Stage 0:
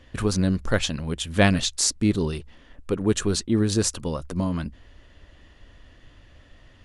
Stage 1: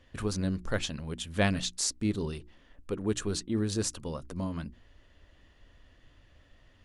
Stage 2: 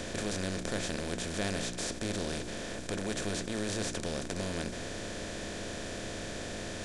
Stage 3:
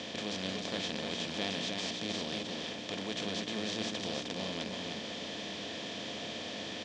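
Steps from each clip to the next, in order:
notches 60/120/180/240/300/360 Hz; gain -8 dB
per-bin compression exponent 0.2; flange 1.8 Hz, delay 8.4 ms, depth 6.7 ms, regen -71%; gain -7 dB
speaker cabinet 200–5500 Hz, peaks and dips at 370 Hz -8 dB, 580 Hz -4 dB, 1500 Hz -10 dB, 3200 Hz +7 dB; echo 0.309 s -4 dB

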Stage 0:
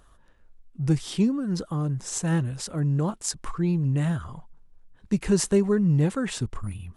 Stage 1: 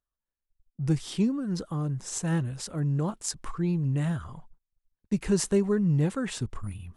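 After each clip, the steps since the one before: gate -44 dBFS, range -32 dB; gain -3 dB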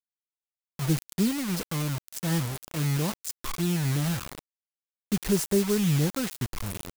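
bell 6800 Hz -10.5 dB 2.6 oct; bit-crush 6-bit; high shelf 4300 Hz +10 dB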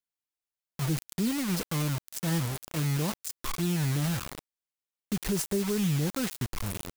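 limiter -19 dBFS, peak gain reduction 6.5 dB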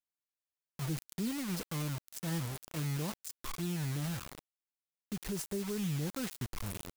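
vocal rider within 3 dB 2 s; gain -7.5 dB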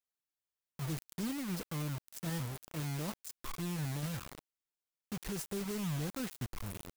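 block floating point 3-bit; gain -2 dB

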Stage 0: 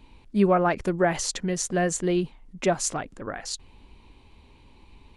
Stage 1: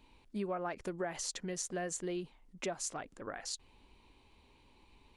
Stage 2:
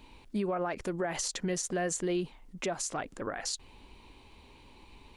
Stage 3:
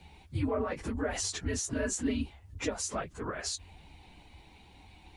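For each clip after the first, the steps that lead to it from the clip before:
tone controls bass -6 dB, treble +2 dB; compressor 3:1, threshold -29 dBFS, peak gain reduction 9.5 dB; gain -7.5 dB
limiter -33 dBFS, peak gain reduction 9 dB; gain +9 dB
phase scrambler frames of 50 ms; frequency shift -100 Hz

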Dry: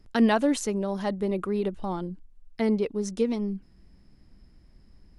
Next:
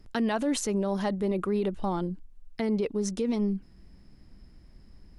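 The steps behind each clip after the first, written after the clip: limiter -22.5 dBFS, peak gain reduction 10.5 dB; gain +2.5 dB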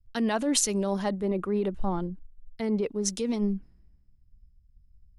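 three-band expander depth 100%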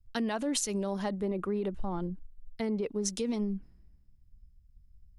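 compressor, threshold -28 dBFS, peak gain reduction 8 dB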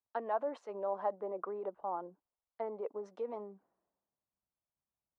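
Butterworth band-pass 780 Hz, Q 1.2; gain +2.5 dB

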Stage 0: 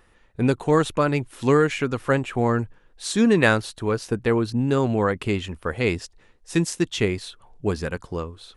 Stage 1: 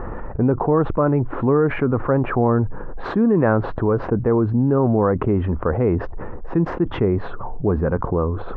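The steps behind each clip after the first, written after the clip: LPF 1200 Hz 24 dB/oct; fast leveller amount 70%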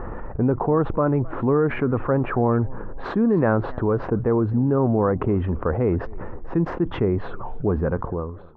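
ending faded out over 0.67 s; warbling echo 0.262 s, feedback 40%, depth 199 cents, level -23 dB; gain -2.5 dB

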